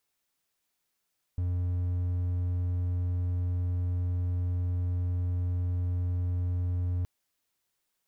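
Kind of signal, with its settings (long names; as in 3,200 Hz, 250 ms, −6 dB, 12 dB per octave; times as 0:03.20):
tone triangle 89 Hz −24.5 dBFS 5.67 s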